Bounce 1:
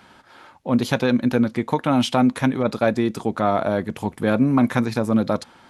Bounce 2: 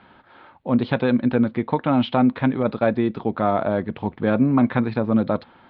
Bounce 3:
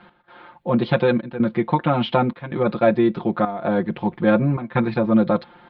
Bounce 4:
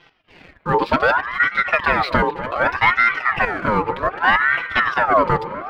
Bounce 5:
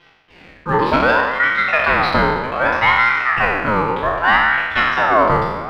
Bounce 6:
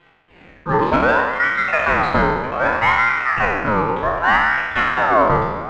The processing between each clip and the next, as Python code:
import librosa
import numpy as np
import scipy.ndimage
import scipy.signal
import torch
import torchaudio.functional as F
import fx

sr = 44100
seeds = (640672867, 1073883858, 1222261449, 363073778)

y1 = scipy.signal.sosfilt(scipy.signal.butter(8, 4100.0, 'lowpass', fs=sr, output='sos'), x)
y1 = fx.high_shelf(y1, sr, hz=3000.0, db=-8.5)
y2 = y1 + 0.97 * np.pad(y1, (int(5.7 * sr / 1000.0), 0))[:len(y1)]
y2 = fx.step_gate(y2, sr, bpm=161, pattern='x..xxxxxxxxx', floor_db=-12.0, edge_ms=4.5)
y3 = fx.leveller(y2, sr, passes=1)
y3 = fx.echo_wet_lowpass(y3, sr, ms=245, feedback_pct=73, hz=2200.0, wet_db=-14.0)
y3 = fx.ring_lfo(y3, sr, carrier_hz=1200.0, swing_pct=45, hz=0.65)
y3 = F.gain(torch.from_numpy(y3), 1.0).numpy()
y4 = fx.spec_trails(y3, sr, decay_s=1.14)
y4 = F.gain(torch.from_numpy(y4), -1.0).numpy()
y5 = scipy.ndimage.median_filter(y4, 9, mode='constant')
y5 = fx.air_absorb(y5, sr, metres=170.0)